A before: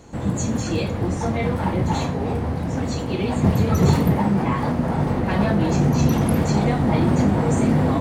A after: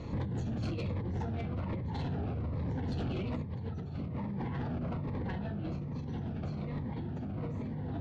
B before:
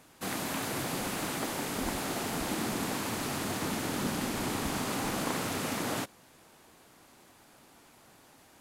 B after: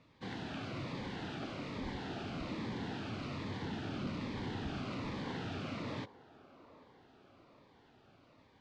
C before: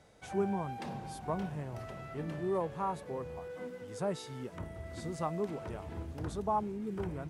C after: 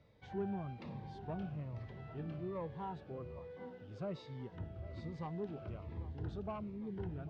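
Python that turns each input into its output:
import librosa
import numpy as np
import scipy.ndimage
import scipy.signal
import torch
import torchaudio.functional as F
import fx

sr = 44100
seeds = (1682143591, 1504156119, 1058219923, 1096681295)

y = scipy.signal.sosfilt(scipy.signal.butter(4, 4200.0, 'lowpass', fs=sr, output='sos'), x)
y = fx.peak_eq(y, sr, hz=100.0, db=7.0, octaves=1.2)
y = fx.over_compress(y, sr, threshold_db=-27.0, ratio=-1.0)
y = 10.0 ** (-24.0 / 20.0) * np.tanh(y / 10.0 ** (-24.0 / 20.0))
y = fx.echo_wet_bandpass(y, sr, ms=798, feedback_pct=59, hz=660.0, wet_db=-16)
y = fx.notch_cascade(y, sr, direction='falling', hz=1.2)
y = y * 10.0 ** (-6.0 / 20.0)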